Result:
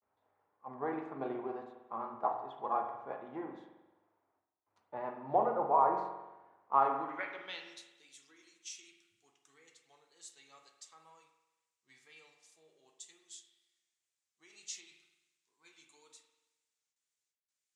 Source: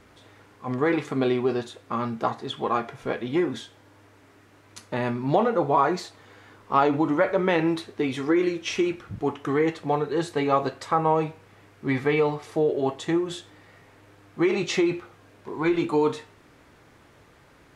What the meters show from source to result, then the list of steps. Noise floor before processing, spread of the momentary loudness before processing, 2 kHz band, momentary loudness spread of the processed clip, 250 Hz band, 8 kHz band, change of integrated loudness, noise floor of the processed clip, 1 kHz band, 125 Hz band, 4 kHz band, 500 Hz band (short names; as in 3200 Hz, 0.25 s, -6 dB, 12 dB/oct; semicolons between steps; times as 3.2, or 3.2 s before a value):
-55 dBFS, 10 LU, -18.0 dB, 24 LU, -22.5 dB, -8.0 dB, -10.5 dB, under -85 dBFS, -8.0 dB, -26.0 dB, -16.5 dB, -16.5 dB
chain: gate with hold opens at -45 dBFS; low shelf 180 Hz +11 dB; notches 60/120/180/240/300 Hz; band-pass sweep 830 Hz -> 7300 Hz, 6.7–7.86; vibrato 2 Hz 55 cents; spring tank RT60 1.4 s, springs 44 ms, chirp 65 ms, DRR 4.5 dB; three-band expander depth 40%; gain -8 dB